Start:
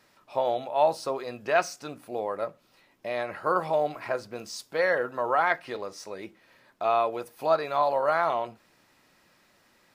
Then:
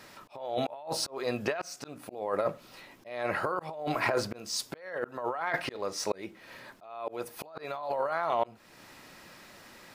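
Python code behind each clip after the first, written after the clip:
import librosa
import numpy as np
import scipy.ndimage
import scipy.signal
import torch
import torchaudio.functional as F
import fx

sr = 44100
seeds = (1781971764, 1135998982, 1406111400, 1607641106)

y = fx.over_compress(x, sr, threshold_db=-33.0, ratio=-1.0)
y = fx.auto_swell(y, sr, attack_ms=430.0)
y = y * librosa.db_to_amplitude(5.5)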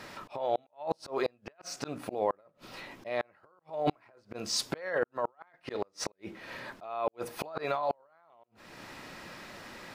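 y = fx.high_shelf(x, sr, hz=6900.0, db=-10.0)
y = fx.gate_flip(y, sr, shuts_db=-23.0, range_db=-38)
y = y * librosa.db_to_amplitude(6.0)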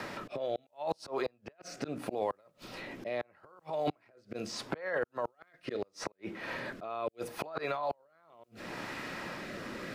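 y = fx.rotary(x, sr, hz=0.75)
y = fx.band_squash(y, sr, depth_pct=70)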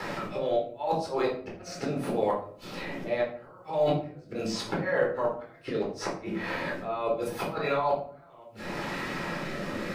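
y = fx.room_shoebox(x, sr, seeds[0], volume_m3=530.0, walls='furnished', distance_m=4.2)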